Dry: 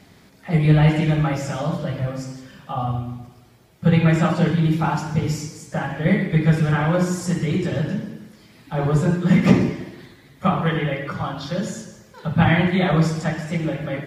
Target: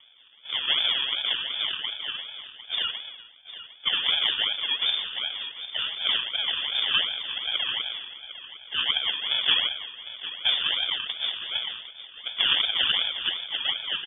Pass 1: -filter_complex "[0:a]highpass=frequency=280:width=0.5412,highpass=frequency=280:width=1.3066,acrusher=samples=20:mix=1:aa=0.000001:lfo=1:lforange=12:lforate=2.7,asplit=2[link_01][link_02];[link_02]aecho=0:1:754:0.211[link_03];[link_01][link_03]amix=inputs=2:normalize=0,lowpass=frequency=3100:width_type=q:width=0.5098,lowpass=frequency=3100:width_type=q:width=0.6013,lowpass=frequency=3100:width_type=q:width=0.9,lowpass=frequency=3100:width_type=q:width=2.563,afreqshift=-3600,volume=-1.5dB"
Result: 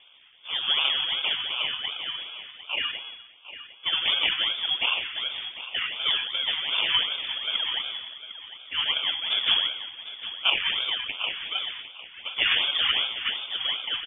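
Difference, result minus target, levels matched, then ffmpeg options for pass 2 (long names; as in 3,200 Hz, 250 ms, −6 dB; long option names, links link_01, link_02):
sample-and-hold swept by an LFO: distortion −10 dB
-filter_complex "[0:a]highpass=frequency=280:width=0.5412,highpass=frequency=280:width=1.3066,acrusher=samples=42:mix=1:aa=0.000001:lfo=1:lforange=25.2:lforate=2.7,asplit=2[link_01][link_02];[link_02]aecho=0:1:754:0.211[link_03];[link_01][link_03]amix=inputs=2:normalize=0,lowpass=frequency=3100:width_type=q:width=0.5098,lowpass=frequency=3100:width_type=q:width=0.6013,lowpass=frequency=3100:width_type=q:width=0.9,lowpass=frequency=3100:width_type=q:width=2.563,afreqshift=-3600,volume=-1.5dB"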